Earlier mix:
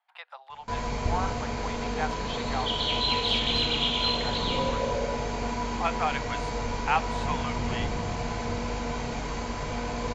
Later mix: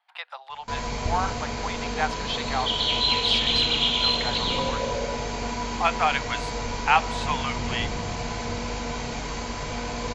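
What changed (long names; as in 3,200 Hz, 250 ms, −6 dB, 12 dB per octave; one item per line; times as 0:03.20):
speech +4.5 dB
master: add parametric band 5,500 Hz +5.5 dB 2.6 octaves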